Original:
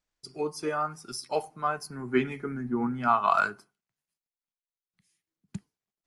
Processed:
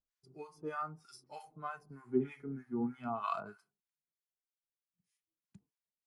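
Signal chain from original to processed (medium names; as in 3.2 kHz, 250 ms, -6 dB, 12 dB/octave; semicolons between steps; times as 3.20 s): harmonic-percussive split percussive -13 dB; harmonic tremolo 3.2 Hz, depth 100%, crossover 850 Hz; trim -4 dB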